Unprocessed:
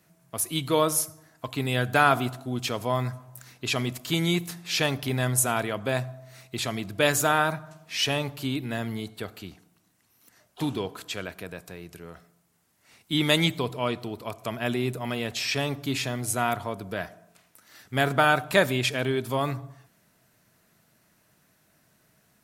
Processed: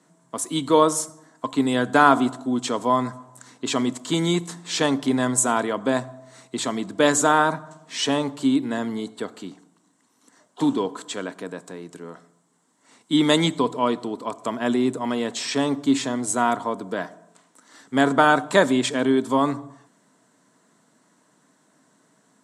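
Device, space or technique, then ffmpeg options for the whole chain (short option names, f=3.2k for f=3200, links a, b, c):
television speaker: -af "highpass=f=160:w=0.5412,highpass=f=160:w=1.3066,equalizer=f=270:t=q:w=4:g=10,equalizer=f=460:t=q:w=4:g=4,equalizer=f=1k:t=q:w=4:g=8,equalizer=f=2.5k:t=q:w=4:g=-9,equalizer=f=4.9k:t=q:w=4:g=-4,equalizer=f=7.8k:t=q:w=4:g=8,lowpass=f=8.7k:w=0.5412,lowpass=f=8.7k:w=1.3066,volume=2.5dB"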